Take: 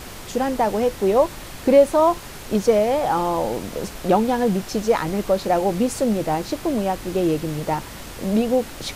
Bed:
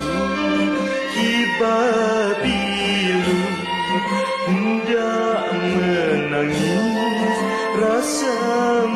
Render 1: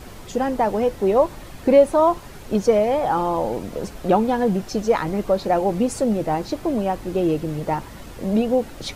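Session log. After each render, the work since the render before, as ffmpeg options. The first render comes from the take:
-af "afftdn=nr=8:nf=-37"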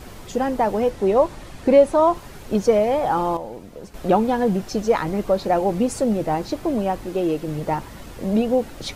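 -filter_complex "[0:a]asettb=1/sr,asplit=3[a][b][c];[a]atrim=end=0.904[d];[b]atrim=start=0.9:end=2.15,asetpts=PTS-STARTPTS,afade=t=in:d=0.004:c=qsin,afade=t=out:st=1.246:d=0.004:c=qsin,lowpass=11k[e];[c]atrim=start=2.146[f];[d][e]acrossfade=d=0.004:c1=hsin:c2=qsin[g];[g][f]acrossfade=d=0.004:c1=qsin:c2=hsin,asettb=1/sr,asplit=3[h][i][j];[h]atrim=end=7.064[k];[i]atrim=start=7.06:end=7.48,asetpts=PTS-STARTPTS,afade=t=in:d=0.004:c=qsin,afade=t=out:st=0.416:d=0.004:c=qsin,equalizer=f=75:w=0.73:g=-13[l];[j]atrim=start=7.476[m];[k][l]acrossfade=d=0.004:c1=hsin:c2=qsin[n];[n][m]acrossfade=d=0.004:c1=qsin:c2=hsin,asplit=3[o][p][q];[o]atrim=end=3.372[r];[p]atrim=start=3.368:end=3.942,asetpts=PTS-STARTPTS,volume=-9.5dB[s];[q]atrim=start=3.938[t];[r][s]acrossfade=d=0.004:c1=hsin:c2=hsin[u];[u][t]acrossfade=d=0.004:c1=hsin:c2=hsin"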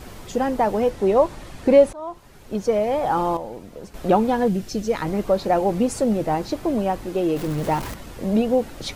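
-filter_complex "[0:a]asettb=1/sr,asplit=3[a][b][c];[a]atrim=end=4.484[d];[b]atrim=start=4.48:end=5.02,asetpts=PTS-STARTPTS,afade=t=in:d=0.004:c=qsin,afade=t=out:st=0.536:d=0.004:c=qsin,equalizer=f=920:w=0.81:g=-10[e];[c]atrim=start=5.016[f];[d][e]acrossfade=d=0.004:c1=hsin:c2=qsin[g];[g][f]acrossfade=d=0.004:c1=qsin:c2=hsin,asettb=1/sr,asplit=3[h][i][j];[h]atrim=end=7.364[k];[i]atrim=start=7.36:end=7.94,asetpts=PTS-STARTPTS,afade=t=in:d=0.004:c=qsin,afade=t=out:st=0.576:d=0.004:c=qsin,aeval=exprs='val(0)+0.5*0.0355*sgn(val(0))':c=same[l];[j]atrim=start=7.936[m];[k][l]acrossfade=d=0.004:c1=hsin:c2=qsin[n];[n][m]acrossfade=d=0.004:c1=qsin:c2=hsin,asplit=2[o][p];[o]atrim=end=1.93,asetpts=PTS-STARTPTS,afade=t=out:st=1.926:d=0.004:c=hsin:silence=0.0749894[q];[p]atrim=start=1.93,asetpts=PTS-STARTPTS,afade=t=in:d=1.27:silence=0.0749894[r];[q][r]concat=n=2:v=0:a=1"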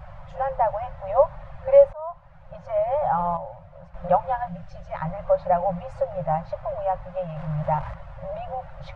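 -af "afftfilt=real='re*(1-between(b*sr/4096,180,520))':imag='im*(1-between(b*sr/4096,180,520))':win_size=4096:overlap=0.75,lowpass=1.3k"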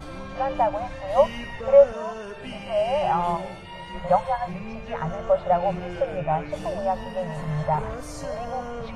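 -filter_complex "[1:a]volume=-17.5dB[a];[0:a][a]amix=inputs=2:normalize=0"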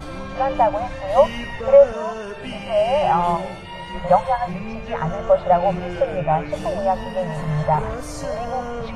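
-af "volume=5dB,alimiter=limit=-3dB:level=0:latency=1"

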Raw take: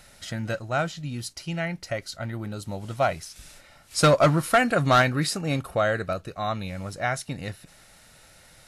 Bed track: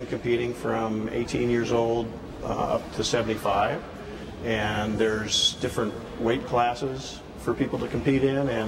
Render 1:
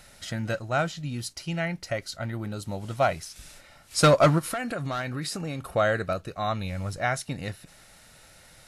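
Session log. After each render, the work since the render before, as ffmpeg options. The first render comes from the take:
-filter_complex "[0:a]asplit=3[a][b][c];[a]afade=t=out:st=4.38:d=0.02[d];[b]acompressor=threshold=-28dB:ratio=6:attack=3.2:release=140:knee=1:detection=peak,afade=t=in:st=4.38:d=0.02,afade=t=out:st=5.67:d=0.02[e];[c]afade=t=in:st=5.67:d=0.02[f];[d][e][f]amix=inputs=3:normalize=0,asettb=1/sr,asplit=3[g][h][i];[g]atrim=end=6.404[j];[h]atrim=start=6.4:end=7,asetpts=PTS-STARTPTS,afade=t=in:d=0.004:c=qsin,afade=t=out:st=0.596:d=0.004:c=qsin,asubboost=boost=10:cutoff=140[k];[i]atrim=start=6.996[l];[j][k]acrossfade=d=0.004:c1=hsin:c2=qsin[m];[m][l]acrossfade=d=0.004:c1=qsin:c2=hsin"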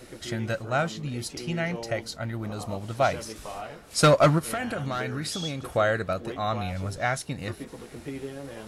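-filter_complex "[1:a]volume=-14dB[a];[0:a][a]amix=inputs=2:normalize=0"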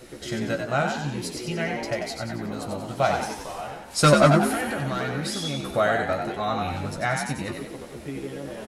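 -filter_complex "[0:a]asplit=2[a][b];[b]adelay=14,volume=-6.5dB[c];[a][c]amix=inputs=2:normalize=0,asplit=2[d][e];[e]asplit=6[f][g][h][i][j][k];[f]adelay=92,afreqshift=58,volume=-5dB[l];[g]adelay=184,afreqshift=116,volume=-11.2dB[m];[h]adelay=276,afreqshift=174,volume=-17.4dB[n];[i]adelay=368,afreqshift=232,volume=-23.6dB[o];[j]adelay=460,afreqshift=290,volume=-29.8dB[p];[k]adelay=552,afreqshift=348,volume=-36dB[q];[l][m][n][o][p][q]amix=inputs=6:normalize=0[r];[d][r]amix=inputs=2:normalize=0"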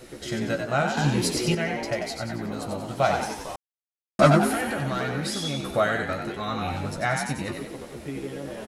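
-filter_complex "[0:a]asettb=1/sr,asplit=3[a][b][c];[a]atrim=end=0.974[d];[b]atrim=start=0.97:end=1.55,asetpts=PTS-STARTPTS,afade=t=in:d=0.004:c=qsin,afade=t=out:st=0.576:d=0.004:c=qsin,acontrast=82[e];[c]atrim=start=1.546[f];[d][e]acrossfade=d=0.004:c1=hsin:c2=qsin[g];[g][f]acrossfade=d=0.004:c1=qsin:c2=hsin,asettb=1/sr,asplit=3[h][i][j];[h]atrim=end=5.844[k];[i]atrim=start=5.84:end=6.63,asetpts=PTS-STARTPTS,afade=t=in:d=0.004:c=qsin,afade=t=out:st=0.786:d=0.004:c=qsin,equalizer=f=720:t=o:w=0.65:g=-9[l];[j]atrim=start=6.626[m];[k][l]acrossfade=d=0.004:c1=hsin:c2=qsin[n];[n][m]acrossfade=d=0.004:c1=qsin:c2=hsin,asplit=3[o][p][q];[o]atrim=end=3.56,asetpts=PTS-STARTPTS,afade=t=out:st=3.556:d=0.004:c=hsin[r];[p]atrim=start=3.56:end=4.19,asetpts=PTS-STARTPTS,volume=0[s];[q]atrim=start=4.19,asetpts=PTS-STARTPTS,afade=t=in:d=0.004:c=hsin[t];[r][s][t]concat=n=3:v=0:a=1"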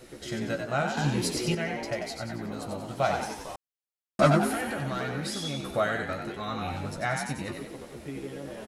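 -af "volume=-4dB"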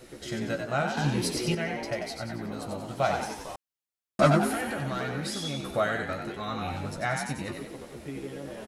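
-filter_complex "[0:a]asettb=1/sr,asplit=3[a][b][c];[a]atrim=end=0.794[d];[b]atrim=start=0.79:end=2.64,asetpts=PTS-STARTPTS,afade=t=in:d=0.004:c=qsin,afade=t=out:st=1.846:d=0.004:c=qsin,bandreject=f=7k:w=12[e];[c]atrim=start=2.636[f];[d][e]acrossfade=d=0.004:c1=hsin:c2=qsin[g];[g][f]acrossfade=d=0.004:c1=qsin:c2=hsin"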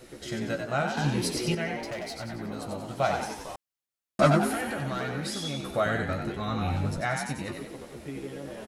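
-filter_complex "[0:a]asettb=1/sr,asplit=3[a][b][c];[a]atrim=end=1.794[d];[b]atrim=start=1.79:end=2.41,asetpts=PTS-STARTPTS,afade=t=in:d=0.004:c=qsin,afade=t=out:st=0.616:d=0.004:c=qsin,asoftclip=type=hard:threshold=-31.5dB[e];[c]atrim=start=2.406[f];[d][e]acrossfade=d=0.004:c1=hsin:c2=qsin[g];[g][f]acrossfade=d=0.004:c1=qsin:c2=hsin,asettb=1/sr,asplit=3[h][i][j];[h]atrim=end=5.864[k];[i]atrim=start=5.86:end=7.01,asetpts=PTS-STARTPTS,afade=t=in:d=0.004:c=qsin,afade=t=out:st=1.146:d=0.004:c=qsin,lowshelf=f=210:g=10[l];[j]atrim=start=7.006[m];[k][l]acrossfade=d=0.004:c1=hsin:c2=qsin[n];[n][m]acrossfade=d=0.004:c1=qsin:c2=hsin"

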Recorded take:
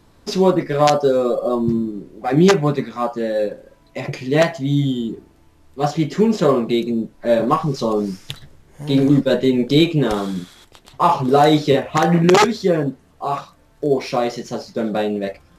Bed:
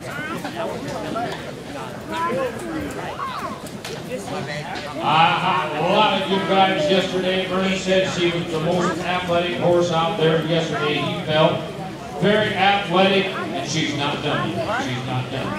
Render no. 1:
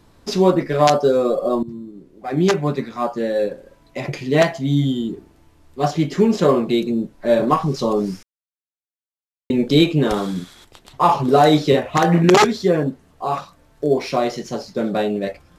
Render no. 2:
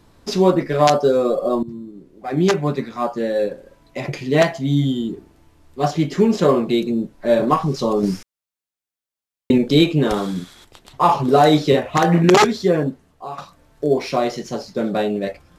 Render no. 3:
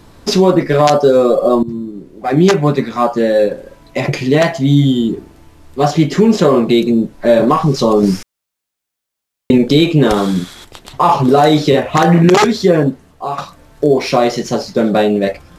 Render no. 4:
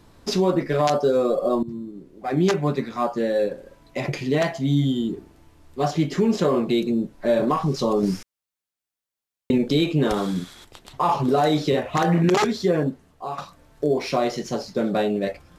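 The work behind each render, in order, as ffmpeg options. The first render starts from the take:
-filter_complex "[0:a]asplit=4[a][b][c][d];[a]atrim=end=1.63,asetpts=PTS-STARTPTS,afade=t=out:st=1.626:d=0.004:c=hsin:silence=0.141254[e];[b]atrim=start=1.63:end=8.23,asetpts=PTS-STARTPTS,afade=t=in:d=1.55:silence=0.141254,afade=t=out:st=6.596:d=0.004:c=hsin[f];[c]atrim=start=8.23:end=9.5,asetpts=PTS-STARTPTS,volume=0[g];[d]atrim=start=9.5,asetpts=PTS-STARTPTS,afade=t=in:d=0.004:c=hsin[h];[e][f][g][h]concat=n=4:v=0:a=1"
-filter_complex "[0:a]asplit=4[a][b][c][d];[a]atrim=end=8.032[e];[b]atrim=start=8.028:end=9.582,asetpts=PTS-STARTPTS,volume=5dB[f];[c]atrim=start=9.578:end=13.38,asetpts=PTS-STARTPTS,afade=t=out:st=3.272:d=0.53:silence=0.237137[g];[d]atrim=start=13.38,asetpts=PTS-STARTPTS,afade=t=in:d=0.004:c=hsin:silence=0.237137[h];[e][f]acrossfade=d=0.004:c1=hsin:c2=hsin[i];[g][h]concat=n=2:v=0:a=1[j];[i][j]acrossfade=d=0.004:c1=hsin:c2=hsin"
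-filter_complex "[0:a]asplit=2[a][b];[b]acompressor=threshold=-22dB:ratio=6,volume=-1.5dB[c];[a][c]amix=inputs=2:normalize=0,alimiter=level_in=5dB:limit=-1dB:release=50:level=0:latency=1"
-af "volume=-10dB"

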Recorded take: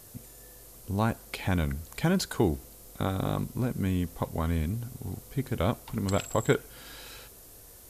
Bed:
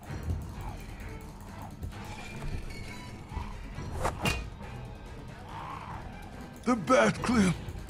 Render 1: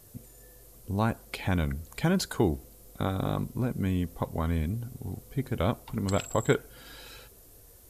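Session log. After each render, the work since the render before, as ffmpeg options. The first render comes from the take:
-af "afftdn=nr=6:nf=-51"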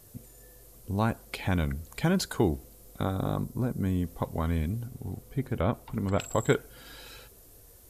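-filter_complex "[0:a]asettb=1/sr,asplit=3[a][b][c];[a]atrim=end=3.044[d];[b]atrim=start=3.04:end=4.05,asetpts=PTS-STARTPTS,afade=t=in:d=0.004:c=qsin,afade=t=out:st=1.006:d=0.004:c=qsin,equalizer=f=2.6k:t=o:w=1:g=-7.5[e];[c]atrim=start=4.046[f];[d][e]acrossfade=d=0.004:c1=hsin:c2=qsin[g];[g][f]acrossfade=d=0.004:c1=qsin:c2=hsin,asettb=1/sr,asplit=3[h][i][j];[h]atrim=end=4.864[k];[i]atrim=start=4.86:end=6.2,asetpts=PTS-STARTPTS,afade=t=in:d=0.004:c=qsin,afade=t=out:st=1.336:d=0.004:c=qsin,acrossover=split=2600[l][m];[m]acompressor=threshold=-54dB:ratio=4:attack=1:release=60[n];[l][n]amix=inputs=2:normalize=0[o];[j]atrim=start=6.196[p];[k][o]acrossfade=d=0.004:c1=hsin:c2=qsin[q];[q][p]acrossfade=d=0.004:c1=qsin:c2=hsin"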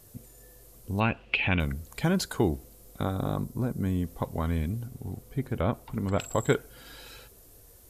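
-filter_complex "[0:a]asettb=1/sr,asplit=3[a][b][c];[a]atrim=end=1.004[d];[b]atrim=start=1:end=1.6,asetpts=PTS-STARTPTS,afade=t=in:d=0.004:c=qsin,afade=t=out:st=0.596:d=0.004:c=qsin,lowpass=f=2.7k:t=q:w=11[e];[c]atrim=start=1.596[f];[d][e]acrossfade=d=0.004:c1=hsin:c2=qsin[g];[g][f]acrossfade=d=0.004:c1=qsin:c2=hsin"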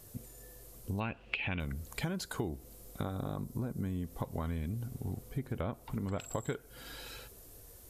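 -af "acompressor=threshold=-33dB:ratio=6"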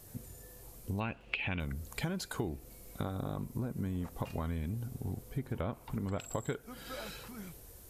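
-filter_complex "[1:a]volume=-22.5dB[a];[0:a][a]amix=inputs=2:normalize=0"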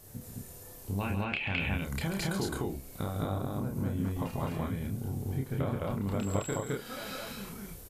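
-filter_complex "[0:a]asplit=2[a][b];[b]adelay=30,volume=-3.5dB[c];[a][c]amix=inputs=2:normalize=0,aecho=1:1:137|212.8:0.355|1"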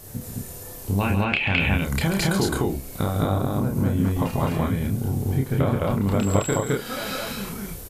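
-af "volume=10.5dB"

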